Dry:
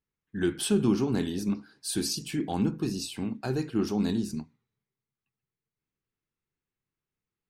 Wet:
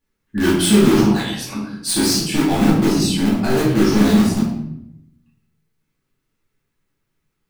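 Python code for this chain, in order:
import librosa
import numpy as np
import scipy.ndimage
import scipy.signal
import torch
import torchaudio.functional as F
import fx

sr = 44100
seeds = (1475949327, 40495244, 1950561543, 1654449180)

p1 = fx.cheby2_highpass(x, sr, hz=320.0, order=4, stop_db=40, at=(1.01, 1.55))
p2 = (np.mod(10.0 ** (25.0 / 20.0) * p1 + 1.0, 2.0) - 1.0) / 10.0 ** (25.0 / 20.0)
p3 = p1 + (p2 * librosa.db_to_amplitude(-6.0))
p4 = fx.room_shoebox(p3, sr, seeds[0], volume_m3=210.0, walls='mixed', distance_m=2.4)
y = p4 * librosa.db_to_amplitude(3.5)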